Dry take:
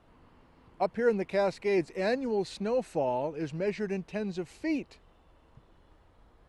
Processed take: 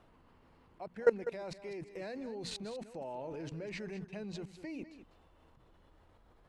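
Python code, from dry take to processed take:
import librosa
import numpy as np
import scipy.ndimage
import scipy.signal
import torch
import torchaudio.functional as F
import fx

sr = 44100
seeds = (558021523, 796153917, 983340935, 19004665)

y = fx.hum_notches(x, sr, base_hz=60, count=5)
y = fx.level_steps(y, sr, step_db=22)
y = y + 10.0 ** (-12.5 / 20.0) * np.pad(y, (int(199 * sr / 1000.0), 0))[:len(y)]
y = y * librosa.db_to_amplitude(2.0)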